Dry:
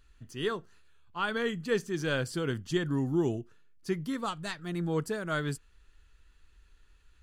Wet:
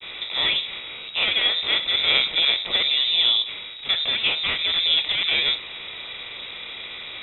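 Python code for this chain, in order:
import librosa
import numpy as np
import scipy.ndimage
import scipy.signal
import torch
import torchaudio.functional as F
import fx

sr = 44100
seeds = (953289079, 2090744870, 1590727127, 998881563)

y = fx.bin_compress(x, sr, power=0.4)
y = fx.granulator(y, sr, seeds[0], grain_ms=90.0, per_s=29.0, spray_ms=11.0, spread_st=0)
y = fx.freq_invert(y, sr, carrier_hz=3800)
y = y * librosa.db_to_amplitude(7.0)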